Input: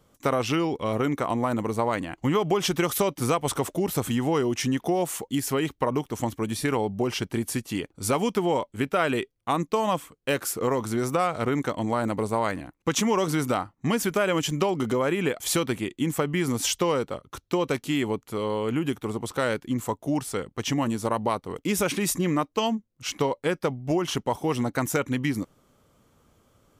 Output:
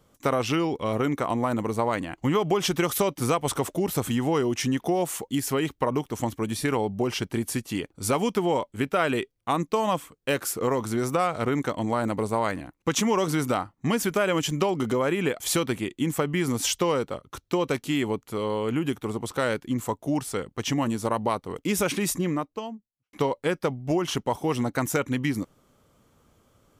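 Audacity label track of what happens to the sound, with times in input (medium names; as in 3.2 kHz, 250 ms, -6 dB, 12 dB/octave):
21.960000	23.130000	studio fade out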